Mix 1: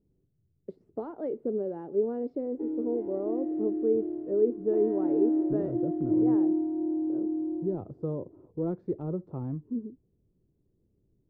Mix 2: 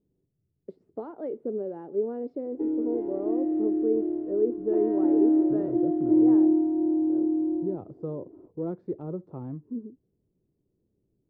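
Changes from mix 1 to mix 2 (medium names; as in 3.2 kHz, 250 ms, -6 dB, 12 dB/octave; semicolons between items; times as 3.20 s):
speech: add bass shelf 99 Hz -10.5 dB; background +5.0 dB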